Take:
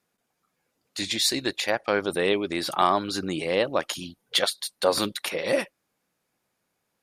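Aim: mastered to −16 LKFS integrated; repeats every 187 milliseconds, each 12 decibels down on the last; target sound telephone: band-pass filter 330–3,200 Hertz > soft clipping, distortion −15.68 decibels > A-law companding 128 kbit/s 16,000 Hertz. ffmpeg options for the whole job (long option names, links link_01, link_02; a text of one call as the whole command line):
ffmpeg -i in.wav -af "highpass=330,lowpass=3200,aecho=1:1:187|374|561:0.251|0.0628|0.0157,asoftclip=threshold=-14.5dB,volume=13dB" -ar 16000 -c:a pcm_alaw out.wav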